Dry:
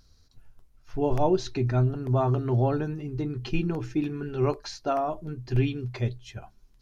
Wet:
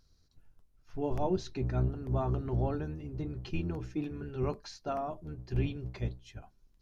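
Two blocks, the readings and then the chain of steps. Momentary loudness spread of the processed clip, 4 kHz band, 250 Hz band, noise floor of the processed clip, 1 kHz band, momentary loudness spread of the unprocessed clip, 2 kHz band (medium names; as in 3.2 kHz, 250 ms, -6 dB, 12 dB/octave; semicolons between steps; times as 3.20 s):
8 LU, -8.5 dB, -7.5 dB, -68 dBFS, -8.5 dB, 8 LU, -8.5 dB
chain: octave divider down 1 oct, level -2 dB; trim -8.5 dB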